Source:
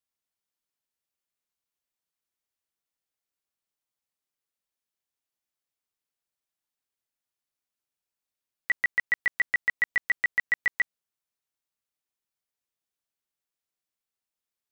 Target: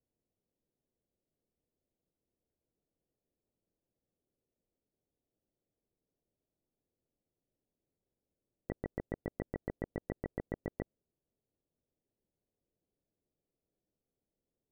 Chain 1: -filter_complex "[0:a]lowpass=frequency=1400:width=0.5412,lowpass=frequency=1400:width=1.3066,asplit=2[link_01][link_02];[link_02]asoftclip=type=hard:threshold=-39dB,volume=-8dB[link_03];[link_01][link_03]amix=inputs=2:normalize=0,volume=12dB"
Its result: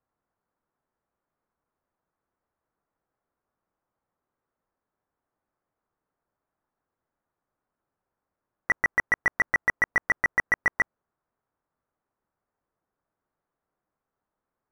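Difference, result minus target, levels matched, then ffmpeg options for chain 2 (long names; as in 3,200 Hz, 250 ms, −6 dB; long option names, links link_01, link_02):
500 Hz band −17.0 dB
-filter_complex "[0:a]lowpass=frequency=530:width=0.5412,lowpass=frequency=530:width=1.3066,asplit=2[link_01][link_02];[link_02]asoftclip=type=hard:threshold=-39dB,volume=-8dB[link_03];[link_01][link_03]amix=inputs=2:normalize=0,volume=12dB"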